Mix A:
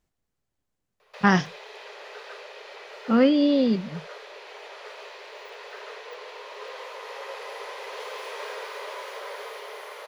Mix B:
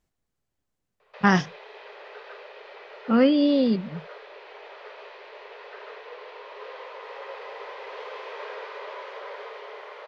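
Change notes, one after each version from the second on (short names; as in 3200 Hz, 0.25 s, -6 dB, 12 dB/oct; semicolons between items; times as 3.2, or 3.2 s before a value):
background: add air absorption 230 m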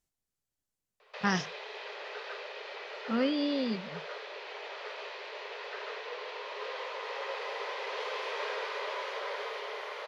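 speech -11.0 dB; master: add bell 12000 Hz +12.5 dB 2.5 oct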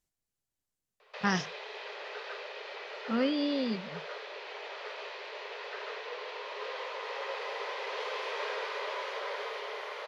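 none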